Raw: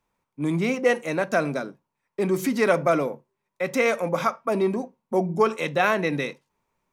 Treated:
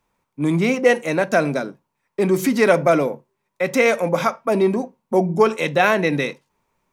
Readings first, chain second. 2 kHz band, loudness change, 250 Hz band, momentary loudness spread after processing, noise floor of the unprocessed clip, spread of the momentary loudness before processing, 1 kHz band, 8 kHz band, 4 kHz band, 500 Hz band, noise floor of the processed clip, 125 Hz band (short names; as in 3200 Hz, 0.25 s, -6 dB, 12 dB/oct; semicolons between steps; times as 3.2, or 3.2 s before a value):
+5.0 dB, +5.0 dB, +5.5 dB, 10 LU, -82 dBFS, 10 LU, +4.0 dB, +5.5 dB, +5.5 dB, +5.5 dB, -76 dBFS, +5.5 dB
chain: dynamic EQ 1200 Hz, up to -5 dB, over -42 dBFS, Q 4.6; gain +5.5 dB